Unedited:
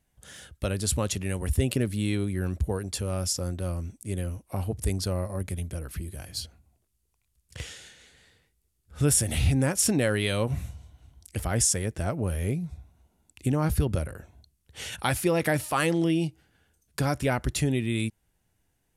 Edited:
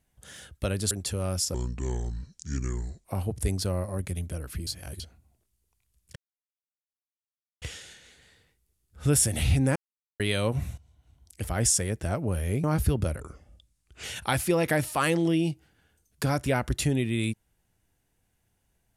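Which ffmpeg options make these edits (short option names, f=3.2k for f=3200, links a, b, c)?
-filter_complex "[0:a]asplit=13[a][b][c][d][e][f][g][h][i][j][k][l][m];[a]atrim=end=0.912[n];[b]atrim=start=2.788:end=3.424[o];[c]atrim=start=3.42:end=4.46,asetpts=PTS-STARTPTS,asetrate=30429,aresample=44100[p];[d]atrim=start=4.456:end=6.082[q];[e]atrim=start=6.078:end=6.412,asetpts=PTS-STARTPTS,areverse[r];[f]atrim=start=6.408:end=7.57,asetpts=PTS-STARTPTS,afade=t=out:st=1.158:d=0.004:c=hsin,apad=pad_dur=1.46[s];[g]atrim=start=7.57:end=9.71,asetpts=PTS-STARTPTS,afade=t=in:d=0.004:c=hsin,afade=t=out:st=2.136:d=0.004:c=hsin[t];[h]atrim=start=9.71:end=10.15,asetpts=PTS-STARTPTS,volume=0[u];[i]atrim=start=10.15:end=10.73,asetpts=PTS-STARTPTS,afade=t=in:d=0.004:c=hsin,afade=t=out:st=0.576:d=0.004:c=hsin:silence=0.158489[v];[j]atrim=start=10.73:end=12.592,asetpts=PTS-STARTPTS,afade=t=in:d=0.86:silence=0.158489[w];[k]atrim=start=13.548:end=14.124[x];[l]atrim=start=14.12:end=14.8,asetpts=PTS-STARTPTS,asetrate=36162,aresample=44100[y];[m]atrim=start=14.796[z];[n][o]acrossfade=d=0.004:c1=hsin:c2=hsin[aa];[aa][p]acrossfade=d=0.004:c1=hsin:c2=hsin[ab];[ab][q]acrossfade=d=0.004:c1=hsin:c2=hsin[ac];[ac][r]acrossfade=d=0.004:c1=hsin:c2=hsin[ad];[s][t][u][v][w]concat=n=5:v=0:a=1[ae];[ad][ae]acrossfade=d=0.004:c1=hsin:c2=hsin[af];[af][x]acrossfade=d=0.004:c1=hsin:c2=hsin[ag];[ag][y]acrossfade=d=0.004:c1=hsin:c2=hsin[ah];[ah][z]acrossfade=d=0.004:c1=hsin:c2=hsin"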